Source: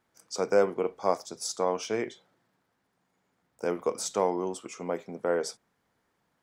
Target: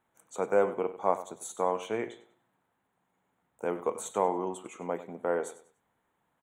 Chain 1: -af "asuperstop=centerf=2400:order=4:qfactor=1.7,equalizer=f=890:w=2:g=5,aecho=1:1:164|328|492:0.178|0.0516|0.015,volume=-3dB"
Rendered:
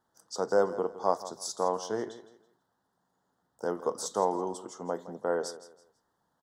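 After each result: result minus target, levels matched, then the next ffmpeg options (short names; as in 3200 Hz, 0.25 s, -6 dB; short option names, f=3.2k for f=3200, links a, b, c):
echo 67 ms late; 4000 Hz band +8.0 dB
-af "asuperstop=centerf=2400:order=4:qfactor=1.7,equalizer=f=890:w=2:g=5,aecho=1:1:97|194|291:0.178|0.0516|0.015,volume=-3dB"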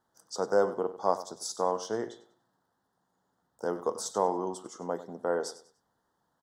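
4000 Hz band +8.0 dB
-af "asuperstop=centerf=5100:order=4:qfactor=1.7,equalizer=f=890:w=2:g=5,aecho=1:1:97|194|291:0.178|0.0516|0.015,volume=-3dB"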